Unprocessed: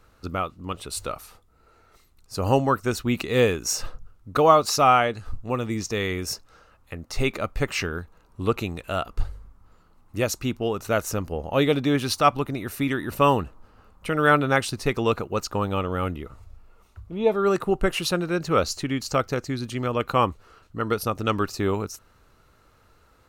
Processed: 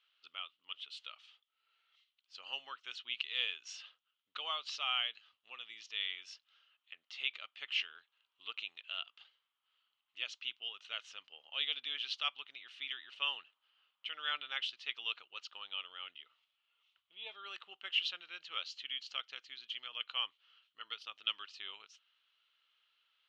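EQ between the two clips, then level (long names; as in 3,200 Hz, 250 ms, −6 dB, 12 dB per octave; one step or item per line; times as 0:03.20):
four-pole ladder band-pass 3,300 Hz, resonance 80%
high-frequency loss of the air 140 metres
high-shelf EQ 2,500 Hz −10 dB
+8.5 dB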